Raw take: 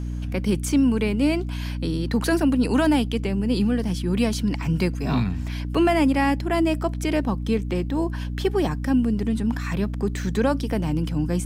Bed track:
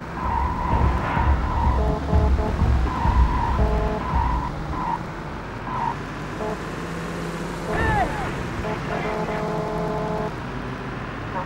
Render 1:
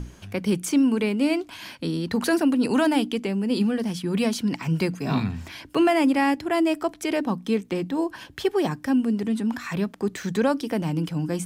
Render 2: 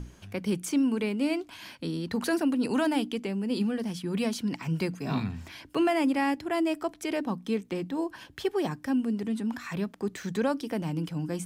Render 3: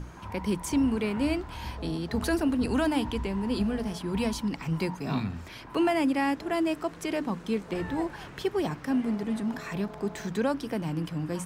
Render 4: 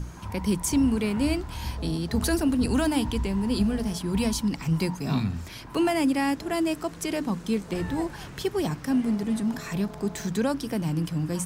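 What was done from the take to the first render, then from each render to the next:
mains-hum notches 60/120/180/240/300 Hz
level −5.5 dB
mix in bed track −18 dB
bass and treble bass +6 dB, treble +9 dB

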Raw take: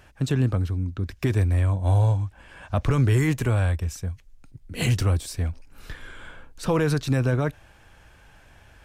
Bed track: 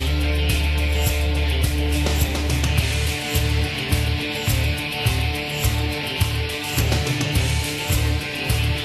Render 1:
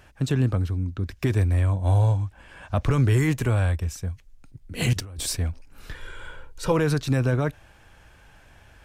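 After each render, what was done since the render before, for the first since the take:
0:04.93–0:05.37: compressor whose output falls as the input rises −33 dBFS
0:05.95–0:06.72: comb filter 2.1 ms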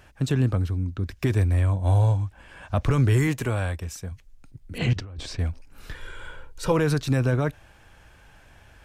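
0:03.27–0:04.12: low-shelf EQ 110 Hz −10 dB
0:04.78–0:05.39: high-frequency loss of the air 160 metres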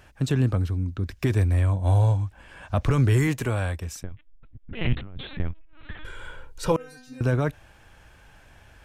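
0:04.03–0:06.05: linear-prediction vocoder at 8 kHz pitch kept
0:06.76–0:07.21: stiff-string resonator 250 Hz, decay 0.6 s, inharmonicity 0.002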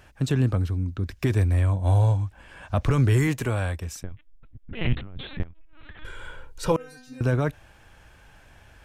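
0:05.43–0:06.02: downward compressor 12 to 1, threshold −38 dBFS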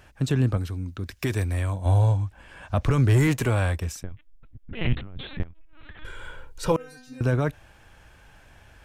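0:00.57–0:01.86: spectral tilt +1.5 dB per octave
0:03.09–0:03.92: leveller curve on the samples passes 1
0:06.09–0:06.98: floating-point word with a short mantissa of 6 bits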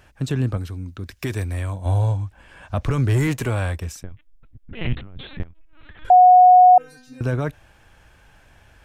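0:06.10–0:06.78: beep over 730 Hz −6.5 dBFS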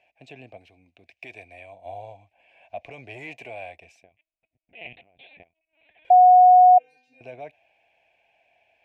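pair of resonant band-passes 1,300 Hz, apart 1.8 octaves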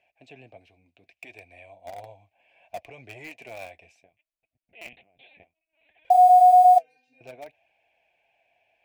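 in parallel at −9 dB: bit reduction 5 bits
on the sum: flanger 0.65 Hz, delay 0.5 ms, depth 9.1 ms, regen −52%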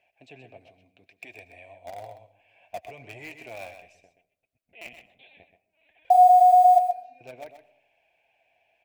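on a send: single-tap delay 128 ms −10 dB
on the sum: comb and all-pass reverb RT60 0.69 s, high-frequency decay 0.3×, pre-delay 70 ms, DRR 18 dB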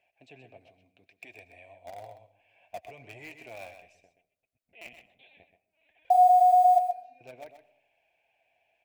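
level −4 dB

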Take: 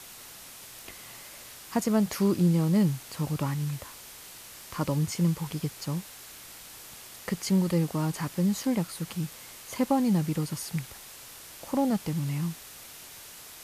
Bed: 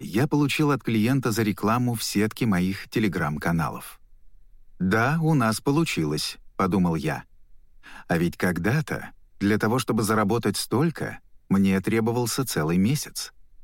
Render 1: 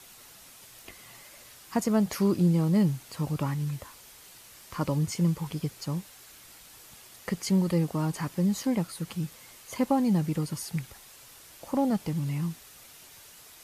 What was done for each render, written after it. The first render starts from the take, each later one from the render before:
broadband denoise 6 dB, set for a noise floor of −47 dBFS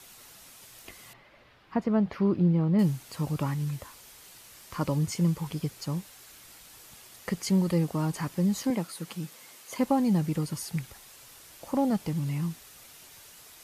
0:01.13–0:02.79: high-frequency loss of the air 360 metres
0:08.70–0:09.79: high-pass filter 190 Hz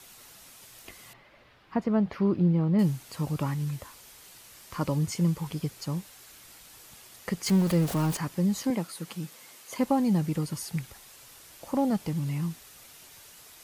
0:07.46–0:08.17: converter with a step at zero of −31 dBFS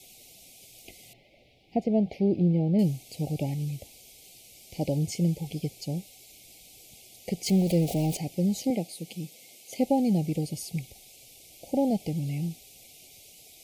dynamic equaliser 810 Hz, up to +5 dB, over −42 dBFS, Q 0.78
Chebyshev band-stop filter 770–2,200 Hz, order 4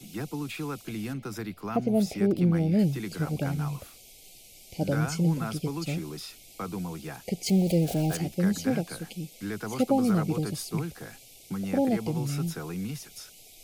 mix in bed −12.5 dB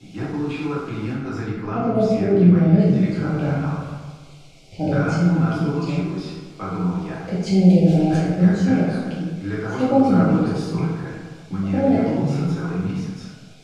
high-frequency loss of the air 120 metres
dense smooth reverb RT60 1.5 s, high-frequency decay 0.45×, DRR −7.5 dB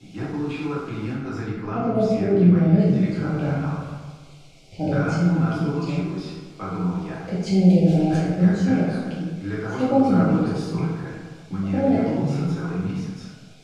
level −2 dB

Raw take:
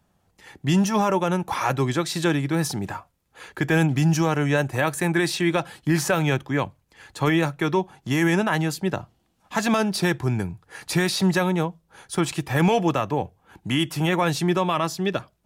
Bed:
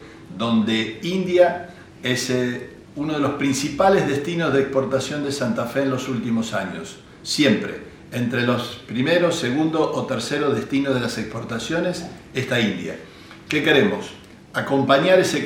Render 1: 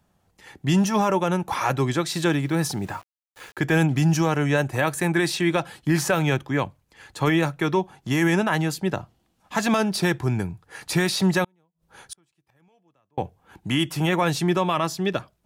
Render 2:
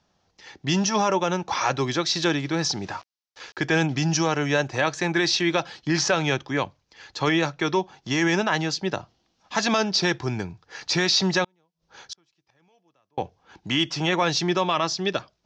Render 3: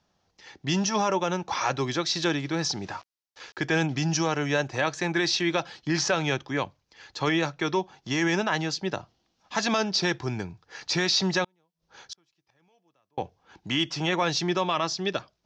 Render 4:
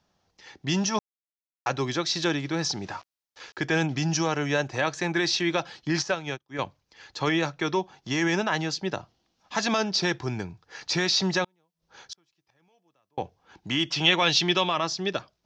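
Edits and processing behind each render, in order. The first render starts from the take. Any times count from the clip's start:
0:02.12–0:03.59: centre clipping without the shift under −45 dBFS; 0:11.44–0:13.18: gate with flip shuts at −23 dBFS, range −42 dB
Butterworth low-pass 5,900 Hz 48 dB per octave; bass and treble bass −6 dB, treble +12 dB
level −3 dB
0:00.99–0:01.66: silence; 0:06.02–0:06.59: expander for the loud parts 2.5 to 1, over −43 dBFS; 0:13.92–0:14.69: parametric band 3,100 Hz +12 dB 1 octave

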